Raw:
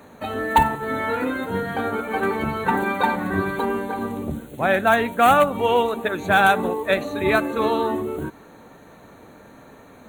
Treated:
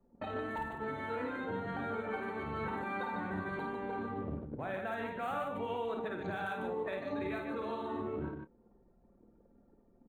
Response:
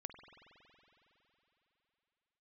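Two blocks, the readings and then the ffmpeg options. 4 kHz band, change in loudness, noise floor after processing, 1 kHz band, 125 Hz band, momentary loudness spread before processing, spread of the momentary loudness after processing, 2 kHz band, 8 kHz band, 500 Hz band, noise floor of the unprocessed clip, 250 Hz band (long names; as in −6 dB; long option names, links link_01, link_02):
−21.0 dB, −17.0 dB, −67 dBFS, −18.5 dB, −13.0 dB, 11 LU, 3 LU, −18.5 dB, below −25 dB, −16.0 dB, −47 dBFS, −14.5 dB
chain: -filter_complex "[0:a]lowpass=frequency=3900:poles=1,anlmdn=6.31,acompressor=threshold=-29dB:ratio=4,alimiter=level_in=3dB:limit=-24dB:level=0:latency=1:release=243,volume=-3dB,asplit=2[link_01][link_02];[link_02]adelay=28,volume=-13.5dB[link_03];[link_01][link_03]amix=inputs=2:normalize=0,aecho=1:1:52.48|148.7:0.562|0.501,volume=-3.5dB"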